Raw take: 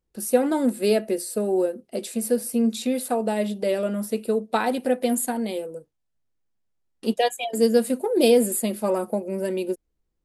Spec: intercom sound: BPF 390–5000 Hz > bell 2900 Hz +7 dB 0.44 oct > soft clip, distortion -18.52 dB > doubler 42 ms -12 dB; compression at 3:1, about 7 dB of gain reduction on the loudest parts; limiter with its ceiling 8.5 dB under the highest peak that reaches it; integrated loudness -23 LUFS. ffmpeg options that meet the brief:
-filter_complex "[0:a]acompressor=threshold=-22dB:ratio=3,alimiter=limit=-19.5dB:level=0:latency=1,highpass=390,lowpass=5k,equalizer=f=2.9k:t=o:w=0.44:g=7,asoftclip=threshold=-24dB,asplit=2[a][b];[b]adelay=42,volume=-12dB[c];[a][c]amix=inputs=2:normalize=0,volume=10.5dB"

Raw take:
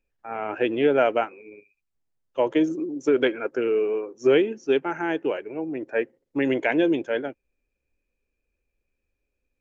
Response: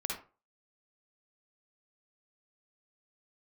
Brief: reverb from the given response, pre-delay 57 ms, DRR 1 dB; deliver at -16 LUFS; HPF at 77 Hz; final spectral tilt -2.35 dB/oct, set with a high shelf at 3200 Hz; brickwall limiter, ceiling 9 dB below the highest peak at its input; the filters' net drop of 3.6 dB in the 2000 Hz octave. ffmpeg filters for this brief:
-filter_complex "[0:a]highpass=77,equalizer=f=2k:t=o:g=-3,highshelf=f=3.2k:g=-5.5,alimiter=limit=-18dB:level=0:latency=1,asplit=2[a][b];[1:a]atrim=start_sample=2205,adelay=57[c];[b][c]afir=irnorm=-1:irlink=0,volume=-3.5dB[d];[a][d]amix=inputs=2:normalize=0,volume=10dB"

